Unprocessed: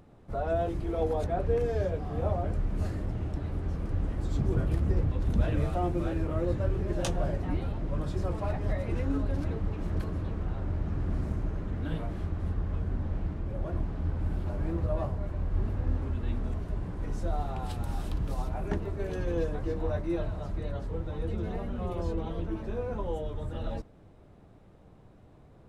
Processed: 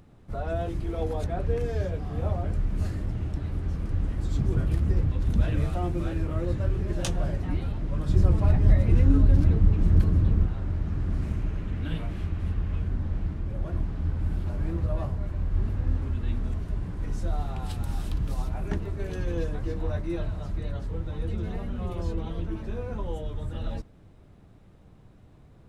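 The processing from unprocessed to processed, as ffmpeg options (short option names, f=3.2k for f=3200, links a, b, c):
-filter_complex "[0:a]asettb=1/sr,asplit=3[a][b][c];[a]atrim=end=8.094[d];[b]atrim=start=8.09:end=10.46,asetpts=PTS-STARTPTS,afade=t=in:d=0.004:c=qsin,afade=t=out:st=2.366:d=0.004:c=qsin,lowshelf=f=380:g=9.5[e];[c]atrim=start=10.456[f];[d][e]acrossfade=d=0.004:c1=hsin:c2=qsin[g];[g][f]acrossfade=d=0.004:c1=qsin:c2=hsin,asettb=1/sr,asplit=3[h][i][j];[h]atrim=end=11.214[k];[i]atrim=start=11.21:end=12.88,asetpts=PTS-STARTPTS,afade=t=in:d=0.004:c=qsin,afade=t=out:st=1.666:d=0.004:c=qsin,equalizer=f=2.6k:w=2:g=6[l];[j]atrim=start=12.876[m];[k][l]acrossfade=d=0.004:c1=hsin:c2=qsin[n];[n][m]acrossfade=d=0.004:c1=qsin:c2=hsin,equalizer=f=610:w=0.56:g=-6.5,volume=3.5dB"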